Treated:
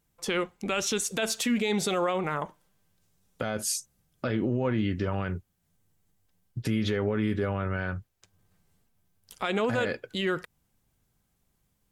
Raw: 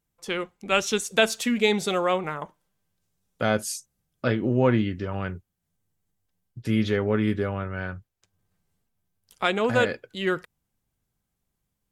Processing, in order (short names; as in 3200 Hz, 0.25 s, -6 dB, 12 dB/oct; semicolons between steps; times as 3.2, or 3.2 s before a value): in parallel at +2 dB: compressor, threshold -33 dBFS, peak gain reduction 17.5 dB; on the sum: limiter -17.5 dBFS, peak gain reduction 12 dB; gain -1 dB